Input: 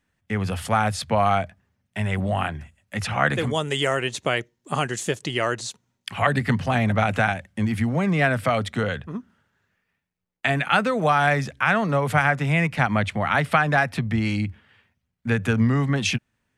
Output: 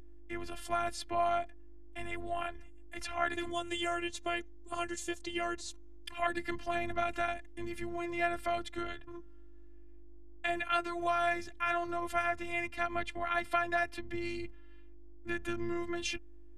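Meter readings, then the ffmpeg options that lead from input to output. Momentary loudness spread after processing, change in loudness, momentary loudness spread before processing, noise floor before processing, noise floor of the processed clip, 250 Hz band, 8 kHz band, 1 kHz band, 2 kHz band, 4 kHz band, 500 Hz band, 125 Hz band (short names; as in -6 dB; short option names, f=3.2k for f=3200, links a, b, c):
12 LU, -12.5 dB, 10 LU, -77 dBFS, -47 dBFS, -15.0 dB, -11.5 dB, -11.0 dB, -13.0 dB, -12.0 dB, -10.5 dB, -27.5 dB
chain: -af "aeval=exprs='val(0)+0.0178*(sin(2*PI*50*n/s)+sin(2*PI*2*50*n/s)/2+sin(2*PI*3*50*n/s)/3+sin(2*PI*4*50*n/s)/4+sin(2*PI*5*50*n/s)/5)':c=same,afftfilt=real='hypot(re,im)*cos(PI*b)':imag='0':win_size=512:overlap=0.75,volume=-8dB"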